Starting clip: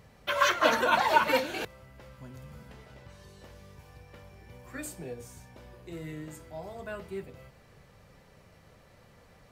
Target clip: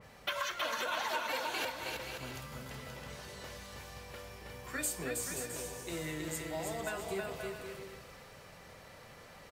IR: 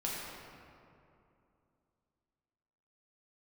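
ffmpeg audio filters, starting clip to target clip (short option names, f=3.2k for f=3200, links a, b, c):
-af "lowshelf=f=370:g=-9,acompressor=threshold=-40dB:ratio=12,aecho=1:1:320|528|663.2|751.1|808.2:0.631|0.398|0.251|0.158|0.1,adynamicequalizer=threshold=0.00126:dfrequency=2800:dqfactor=0.7:tfrequency=2800:tqfactor=0.7:attack=5:release=100:ratio=0.375:range=2.5:mode=boostabove:tftype=highshelf,volume=5.5dB"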